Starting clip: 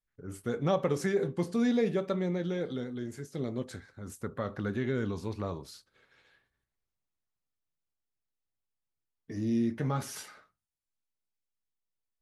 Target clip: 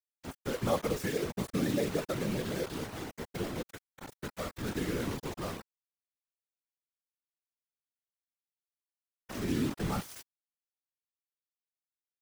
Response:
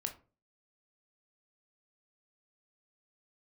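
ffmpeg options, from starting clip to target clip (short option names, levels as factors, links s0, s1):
-filter_complex "[0:a]asettb=1/sr,asplit=3[s0][s1][s2];[s0]atrim=end=2.664[s3];[s1]atrim=start=2.66:end=3.25,asetpts=PTS-STARTPTS,afade=t=in:d=0.004:c=qsin,afade=t=out:st=0.586:d=0.004:c=qsin,aecho=1:1:6.8:0.32,atrim=end_sample=26019[s4];[s2]atrim=start=3.246[s5];[s3][s4]acrossfade=d=0.004:c1=hsin:c2=qsin[s6];[s6][s5]acrossfade=d=0.004:c1=qsin:c2=hsin,acrusher=bits=5:mix=0:aa=0.000001,afftfilt=real='hypot(re,im)*cos(2*PI*random(0))':imag='hypot(re,im)*sin(2*PI*random(1))':win_size=512:overlap=0.75,volume=1.41"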